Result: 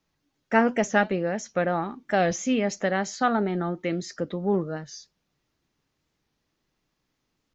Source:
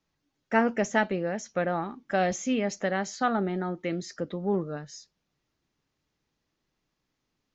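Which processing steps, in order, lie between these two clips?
warped record 45 rpm, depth 100 cents; trim +3 dB

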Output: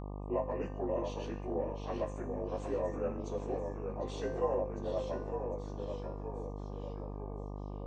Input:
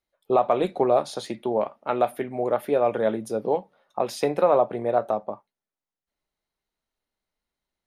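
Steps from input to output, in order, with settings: frequency axis rescaled in octaves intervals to 88%; feedback comb 260 Hz, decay 0.65 s, harmonics all, mix 80%; repeats whose band climbs or falls 753 ms, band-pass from 3.6 kHz, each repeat 0.7 oct, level -7.5 dB; ever faster or slower copies 646 ms, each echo -1 st, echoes 3, each echo -6 dB; mains buzz 50 Hz, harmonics 24, -42 dBFS -5 dB/octave

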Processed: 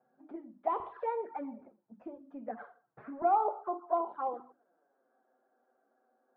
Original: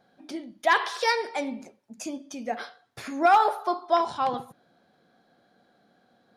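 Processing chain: high-pass 160 Hz 24 dB/octave, from 0.80 s 54 Hz, from 3.22 s 300 Hz; touch-sensitive flanger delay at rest 8.1 ms, full sweep at -22.5 dBFS; low-pass 1.4 kHz 24 dB/octave; hum notches 50/100/150/200/250/300/350 Hz; trim -5 dB

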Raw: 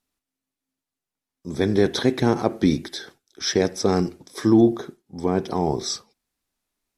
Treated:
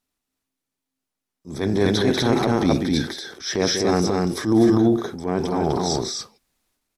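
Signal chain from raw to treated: loudspeakers at several distances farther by 65 m -10 dB, 86 m -2 dB; transient shaper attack -7 dB, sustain +6 dB

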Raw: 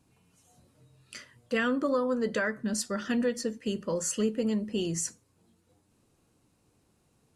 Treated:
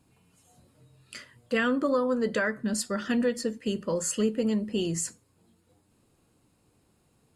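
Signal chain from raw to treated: band-stop 5.9 kHz, Q 7.2; trim +2 dB

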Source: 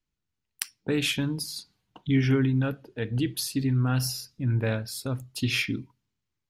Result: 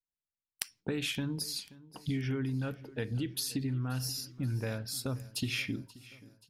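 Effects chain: gate with hold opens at -56 dBFS; compression, threshold -31 dBFS, peak gain reduction 12.5 dB; on a send: feedback delay 530 ms, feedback 54%, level -20 dB

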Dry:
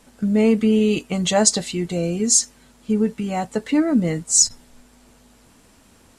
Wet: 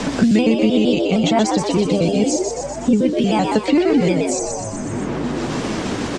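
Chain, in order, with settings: pitch shift switched off and on +2.5 st, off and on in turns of 77 ms; low-pass 6.7 kHz 24 dB/octave; bass shelf 370 Hz +6 dB; on a send: frequency-shifting echo 123 ms, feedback 44%, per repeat +95 Hz, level -5.5 dB; on the sum: three bands compressed up and down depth 100%

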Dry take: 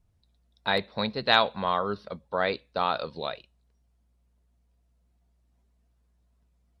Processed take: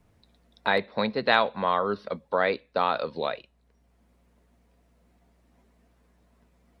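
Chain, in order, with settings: graphic EQ 250/500/1000/2000 Hz +6/+6/+4/+7 dB; three bands compressed up and down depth 40%; trim -4.5 dB

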